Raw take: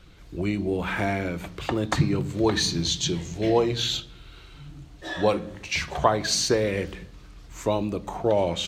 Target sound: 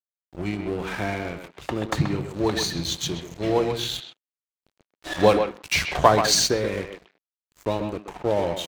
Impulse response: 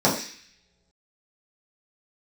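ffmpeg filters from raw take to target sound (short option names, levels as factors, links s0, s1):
-filter_complex "[0:a]aeval=exprs='sgn(val(0))*max(abs(val(0))-0.0178,0)':c=same,asplit=2[s0][s1];[s1]adelay=130,highpass=300,lowpass=3400,asoftclip=type=hard:threshold=0.188,volume=0.447[s2];[s0][s2]amix=inputs=2:normalize=0,asplit=3[s3][s4][s5];[s3]afade=t=out:st=4.77:d=0.02[s6];[s4]acontrast=79,afade=t=in:st=4.77:d=0.02,afade=t=out:st=6.46:d=0.02[s7];[s5]afade=t=in:st=6.46:d=0.02[s8];[s6][s7][s8]amix=inputs=3:normalize=0"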